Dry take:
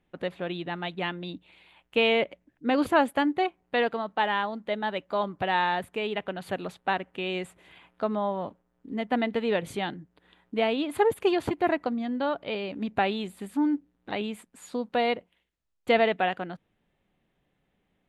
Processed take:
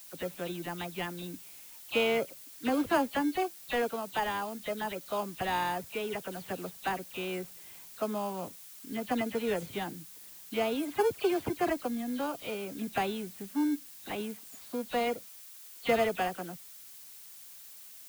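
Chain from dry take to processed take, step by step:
every frequency bin delayed by itself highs early, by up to 116 ms
in parallel at −11 dB: sample-rate reduction 1,900 Hz, jitter 0%
on the sum: background noise blue −44 dBFS
level −6 dB

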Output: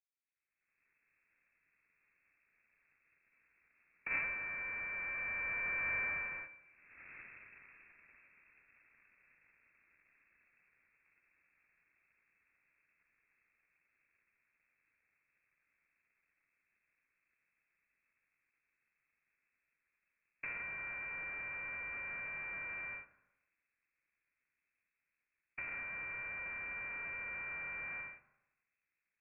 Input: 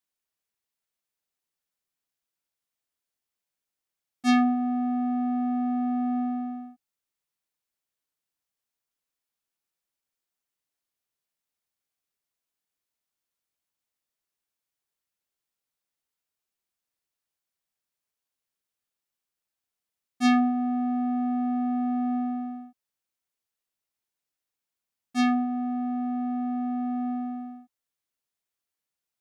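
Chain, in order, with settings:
source passing by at 0:07.00, 14 m/s, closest 3.5 metres
camcorder AGC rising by 36 dB per second
low-shelf EQ 250 Hz −7.5 dB
sample-rate reduction 1,800 Hz, jitter 20%
four-comb reverb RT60 0.98 s, combs from 27 ms, DRR 11 dB
voice inversion scrambler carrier 2,600 Hz
level +6 dB

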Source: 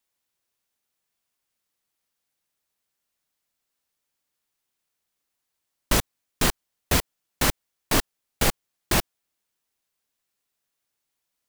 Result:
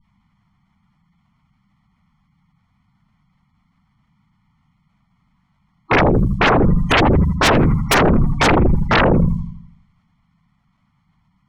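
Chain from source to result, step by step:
lower of the sound and its delayed copy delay 0.92 ms
low shelf with overshoot 250 Hz +11 dB, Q 3
gate on every frequency bin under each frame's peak −25 dB strong
low-pass that shuts in the quiet parts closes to 1,600 Hz, open at −25 dBFS
in parallel at +1 dB: output level in coarse steps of 18 dB
on the sum: mains-hum notches 60/120/180 Hz
on a send: bucket-brigade delay 81 ms, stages 1,024, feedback 50%, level −9 dB
on the sum: sine wavefolder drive 15 dB, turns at −9.5 dBFS

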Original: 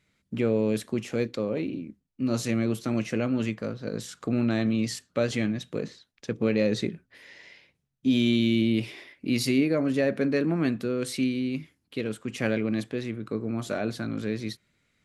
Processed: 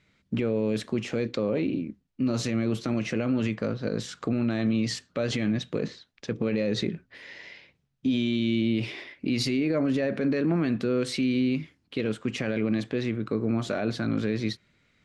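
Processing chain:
low-pass filter 5,500 Hz 12 dB per octave
brickwall limiter −22.5 dBFS, peak gain reduction 10.5 dB
level +5 dB

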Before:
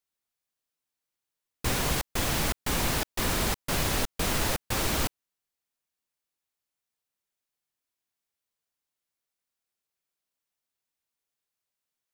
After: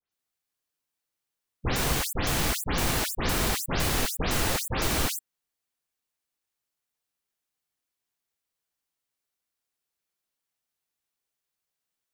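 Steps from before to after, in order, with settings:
every frequency bin delayed by itself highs late, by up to 119 ms
level +1.5 dB

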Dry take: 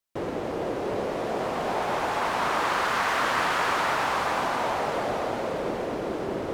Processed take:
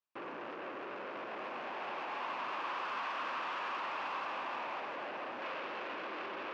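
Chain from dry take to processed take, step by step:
parametric band 2,400 Hz −13 dB 2.6 octaves, from 0:05.42 +2 dB
brickwall limiter −25.5 dBFS, peak gain reduction 7.5 dB
soft clipping −39.5 dBFS, distortion −8 dB
loudspeaker in its box 400–4,400 Hz, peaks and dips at 450 Hz −7 dB, 690 Hz −4 dB, 1,100 Hz +6 dB, 1,600 Hz +3 dB, 2,600 Hz +8 dB, 4,000 Hz −3 dB
level +2 dB

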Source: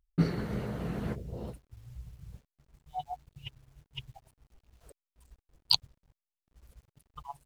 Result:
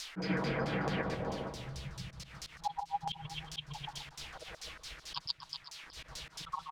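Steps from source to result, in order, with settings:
comb filter 6.9 ms, depth 47%
repeating echo 142 ms, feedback 27%, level −3 dB
background noise blue −53 dBFS
auto-filter low-pass saw down 4.1 Hz 840–5,200 Hz
downward compressor 2 to 1, threshold −53 dBFS, peak gain reduction 20.5 dB
volume swells 104 ms
low-shelf EQ 300 Hz −9 dB
single-tap delay 411 ms −16 dB
change of speed 1.11×
level +15.5 dB

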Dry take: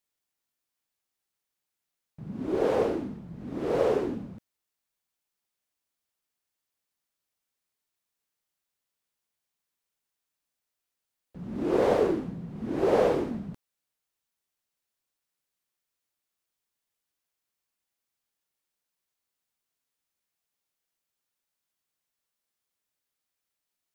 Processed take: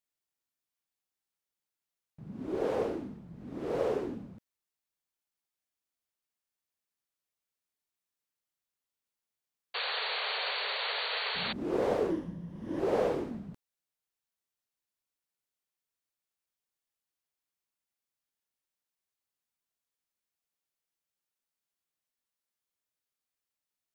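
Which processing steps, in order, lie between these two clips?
0:09.74–0:11.53: sound drawn into the spectrogram noise 400–4,600 Hz −28 dBFS
0:12.10–0:12.80: EQ curve with evenly spaced ripples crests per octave 1.2, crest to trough 8 dB
level −6 dB

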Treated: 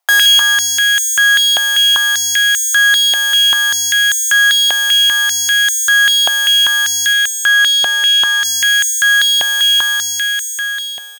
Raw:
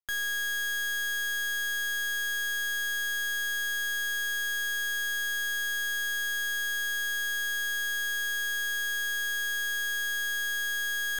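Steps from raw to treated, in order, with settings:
fade-out on the ending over 3.04 s
0:07.13–0:08.45: high-shelf EQ 6,900 Hz −8.5 dB
bouncing-ball delay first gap 170 ms, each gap 0.9×, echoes 5
boost into a limiter +27 dB
high-pass on a step sequencer 5.1 Hz 730–7,400 Hz
level −6.5 dB

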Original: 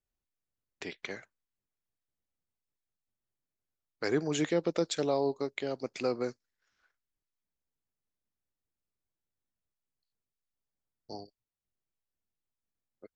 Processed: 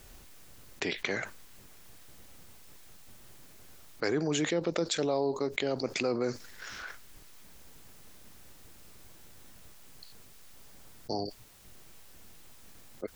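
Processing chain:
envelope flattener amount 70%
level −2.5 dB

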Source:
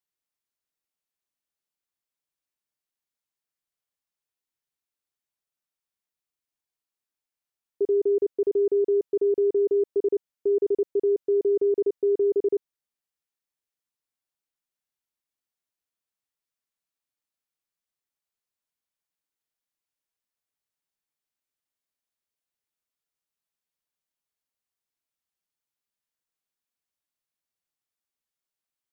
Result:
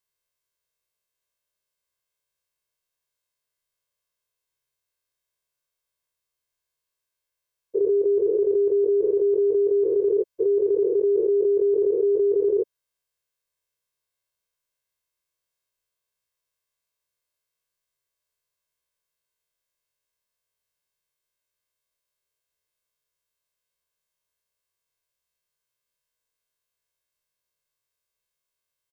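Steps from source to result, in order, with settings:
every bin's largest magnitude spread in time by 120 ms
comb filter 1.9 ms, depth 97%
level −2 dB

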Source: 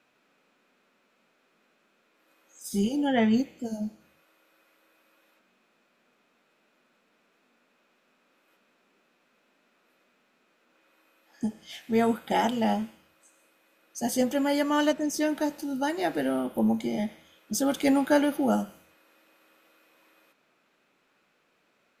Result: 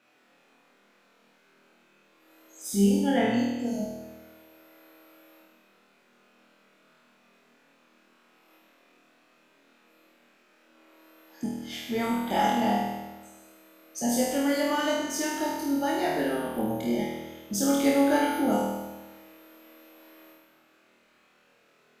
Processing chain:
in parallel at +1.5 dB: downward compressor, threshold −34 dBFS, peak gain reduction 15.5 dB
on the sum: flutter between parallel walls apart 4.3 metres, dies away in 1.1 s
level −6.5 dB

